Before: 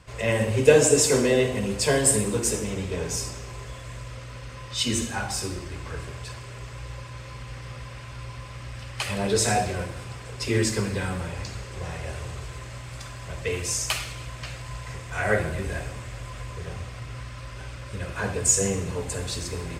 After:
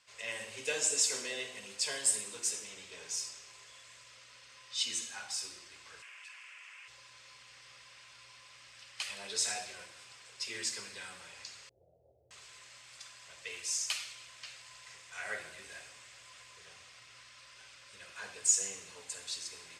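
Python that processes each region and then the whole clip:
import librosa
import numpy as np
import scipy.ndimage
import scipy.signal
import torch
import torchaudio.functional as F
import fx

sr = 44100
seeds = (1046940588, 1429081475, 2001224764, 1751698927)

y = fx.chain(x, sr, fx.highpass(hz=1100.0, slope=12),
    fx.high_shelf_res(hz=3200.0, db=-7.0, q=3.0),
    fx.env_flatten(amount_pct=70), at=(6.02, 6.88))
y = fx.chain(y, sr, fx.sample_sort(block=32),
    fx.cheby1_lowpass(hz=690.0, order=6),
    fx.peak_eq(hz=210.0, db=-8.5, octaves=1.0), at=(11.69, 12.31))
y = scipy.signal.sosfilt(scipy.signal.butter(2, 5500.0, 'lowpass', fs=sr, output='sos'), y)
y = np.diff(y, prepend=0.0)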